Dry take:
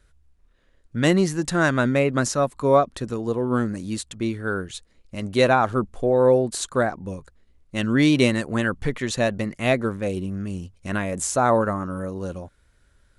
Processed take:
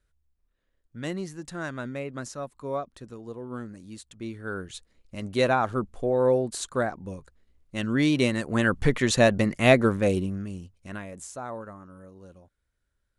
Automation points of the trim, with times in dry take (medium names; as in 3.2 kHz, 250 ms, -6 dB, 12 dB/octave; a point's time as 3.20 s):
3.95 s -14 dB
4.74 s -5 dB
8.32 s -5 dB
8.82 s +3 dB
10.12 s +3 dB
10.47 s -5.5 dB
11.51 s -18 dB